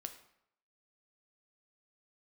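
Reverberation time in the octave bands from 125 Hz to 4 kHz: 0.70 s, 0.70 s, 0.70 s, 0.75 s, 0.65 s, 0.55 s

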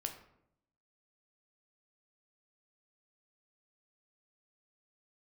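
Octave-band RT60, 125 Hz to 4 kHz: 1.0 s, 0.95 s, 0.80 s, 0.70 s, 0.60 s, 0.45 s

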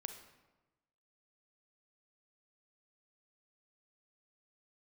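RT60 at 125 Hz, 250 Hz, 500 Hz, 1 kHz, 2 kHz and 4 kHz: 1.2 s, 1.2 s, 1.1 s, 1.1 s, 0.95 s, 0.75 s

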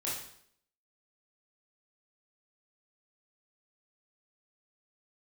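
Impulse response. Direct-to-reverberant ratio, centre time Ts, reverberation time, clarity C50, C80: -7.0 dB, 49 ms, 0.65 s, 2.5 dB, 7.0 dB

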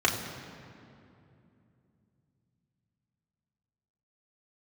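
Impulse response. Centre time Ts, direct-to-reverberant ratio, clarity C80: 49 ms, -2.5 dB, 7.0 dB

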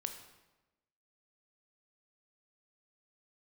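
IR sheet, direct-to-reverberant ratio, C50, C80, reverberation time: 6.0 dB, 8.5 dB, 10.5 dB, 1.1 s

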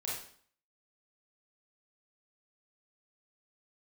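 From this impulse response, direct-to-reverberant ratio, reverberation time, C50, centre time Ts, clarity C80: -6.5 dB, 0.55 s, 1.0 dB, 54 ms, 6.0 dB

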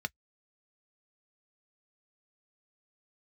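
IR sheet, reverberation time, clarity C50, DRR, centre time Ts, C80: no single decay rate, 49.0 dB, 9.5 dB, 2 ms, 60.0 dB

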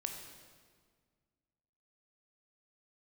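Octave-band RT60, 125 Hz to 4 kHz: 2.3 s, 2.2 s, 1.8 s, 1.7 s, 1.5 s, 1.4 s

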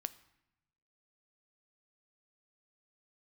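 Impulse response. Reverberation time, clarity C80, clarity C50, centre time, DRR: 0.85 s, 19.5 dB, 17.5 dB, 3 ms, 13.5 dB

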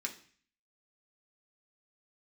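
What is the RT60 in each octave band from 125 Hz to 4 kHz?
0.60 s, 0.55 s, 0.45 s, 0.45 s, 0.55 s, 0.55 s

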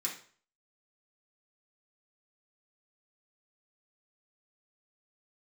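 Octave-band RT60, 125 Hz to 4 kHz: 0.50 s, 0.40 s, 0.45 s, 0.45 s, 0.45 s, 0.40 s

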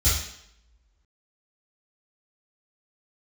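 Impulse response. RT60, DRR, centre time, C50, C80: 0.75 s, -13.0 dB, 56 ms, 1.0 dB, 6.0 dB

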